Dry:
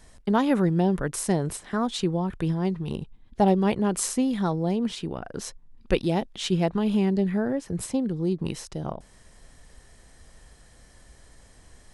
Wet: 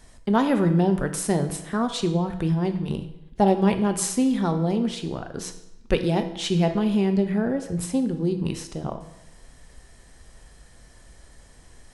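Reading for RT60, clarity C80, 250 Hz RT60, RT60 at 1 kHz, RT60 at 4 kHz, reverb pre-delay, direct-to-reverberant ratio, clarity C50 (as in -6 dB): 0.85 s, 12.5 dB, 0.85 s, 0.90 s, 0.75 s, 6 ms, 7.0 dB, 10.5 dB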